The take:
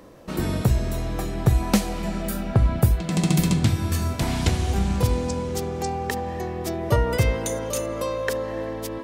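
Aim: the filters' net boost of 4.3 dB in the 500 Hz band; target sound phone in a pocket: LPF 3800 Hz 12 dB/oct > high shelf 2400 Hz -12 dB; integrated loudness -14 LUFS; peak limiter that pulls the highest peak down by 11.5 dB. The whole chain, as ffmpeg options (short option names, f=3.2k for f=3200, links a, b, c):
-af "equalizer=f=500:t=o:g=5.5,alimiter=limit=-15.5dB:level=0:latency=1,lowpass=3.8k,highshelf=f=2.4k:g=-12,volume=12dB"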